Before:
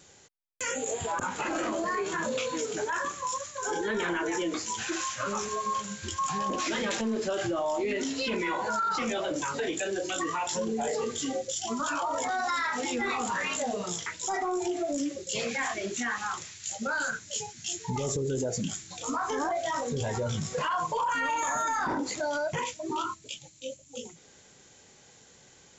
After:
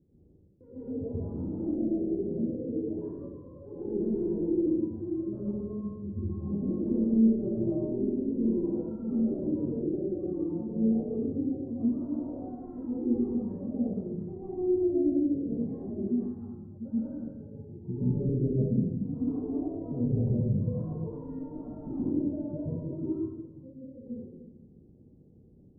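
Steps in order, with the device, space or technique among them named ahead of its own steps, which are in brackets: next room (LPF 340 Hz 24 dB/oct; reverb RT60 1.1 s, pre-delay 0.114 s, DRR -9 dB); 1.75–2.99 steep low-pass 870 Hz 96 dB/oct; gain -2.5 dB

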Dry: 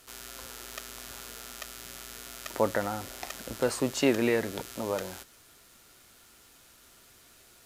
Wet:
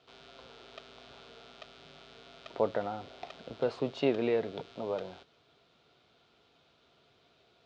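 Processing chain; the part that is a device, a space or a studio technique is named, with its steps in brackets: guitar cabinet (speaker cabinet 79–4100 Hz, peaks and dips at 150 Hz +7 dB, 440 Hz +7 dB, 690 Hz +7 dB, 1800 Hz -7 dB, 3600 Hz +4 dB); gain -7 dB

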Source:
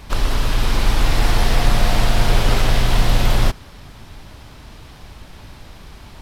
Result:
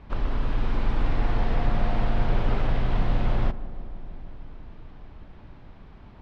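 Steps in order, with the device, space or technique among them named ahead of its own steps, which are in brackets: 0.42–1.11 high shelf 12000 Hz +7 dB; phone in a pocket (LPF 3300 Hz 12 dB/oct; bell 220 Hz +2.5 dB 1.2 oct; high shelf 2400 Hz -11 dB); darkening echo 0.155 s, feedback 85%, low-pass 1200 Hz, level -15 dB; gain -8 dB

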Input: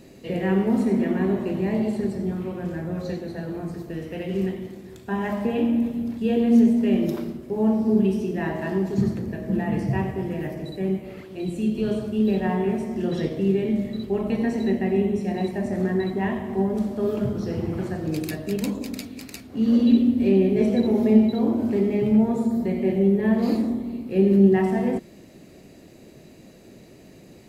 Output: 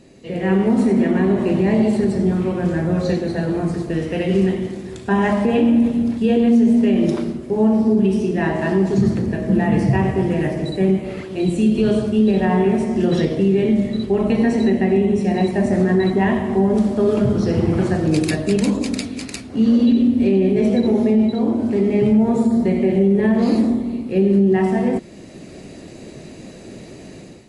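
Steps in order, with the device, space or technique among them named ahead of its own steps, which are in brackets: low-bitrate web radio (AGC gain up to 11 dB; limiter -7.5 dBFS, peak gain reduction 6.5 dB; MP3 48 kbps 24000 Hz)

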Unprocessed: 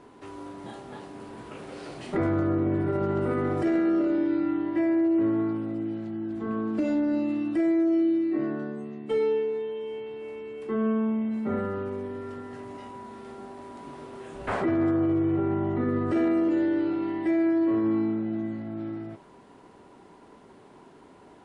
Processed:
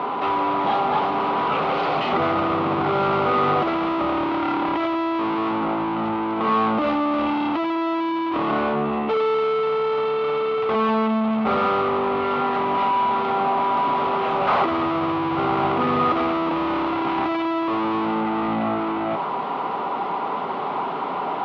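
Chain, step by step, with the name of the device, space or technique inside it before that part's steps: overdrive pedal into a guitar cabinet (overdrive pedal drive 36 dB, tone 3500 Hz, clips at -15.5 dBFS; speaker cabinet 88–3600 Hz, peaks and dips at 110 Hz -4 dB, 160 Hz +5 dB, 330 Hz -5 dB, 800 Hz +7 dB, 1200 Hz +9 dB, 1700 Hz -9 dB)

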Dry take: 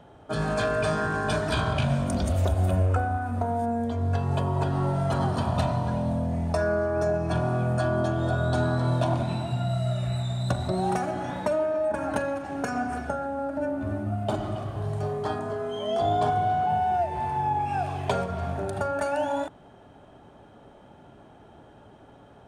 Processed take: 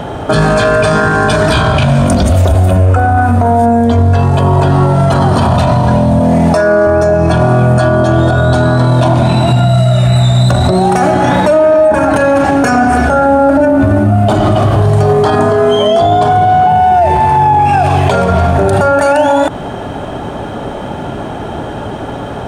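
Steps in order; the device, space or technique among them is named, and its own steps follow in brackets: 6.2–6.87 HPF 170 Hz 12 dB/oct; loud club master (compressor 2:1, threshold -30 dBFS, peak gain reduction 6.5 dB; hard clip -19 dBFS, distortion -42 dB; maximiser +31 dB); gain -1 dB

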